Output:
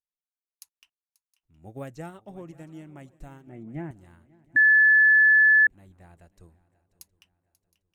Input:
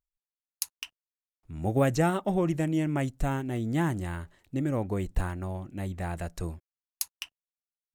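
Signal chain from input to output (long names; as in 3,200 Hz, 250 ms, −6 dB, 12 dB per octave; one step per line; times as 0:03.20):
0:03.47–0:03.91: loudspeaker in its box 110–2,300 Hz, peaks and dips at 140 Hz +9 dB, 220 Hz +6 dB, 340 Hz +6 dB, 670 Hz +8 dB, 1,100 Hz −8 dB, 2,300 Hz +8 dB
feedback echo with a long and a short gap by turns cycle 716 ms, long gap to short 3 to 1, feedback 41%, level −17 dB
0:04.56–0:05.67: beep over 1,730 Hz −6 dBFS
expander for the loud parts 1.5 to 1, over −36 dBFS
level −7.5 dB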